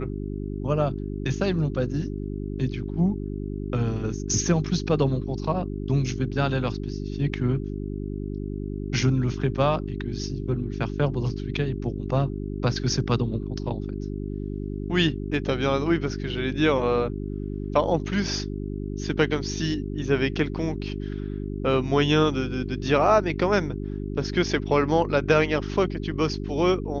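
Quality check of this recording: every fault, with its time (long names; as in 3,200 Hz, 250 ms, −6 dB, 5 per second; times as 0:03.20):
mains hum 50 Hz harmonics 8 −31 dBFS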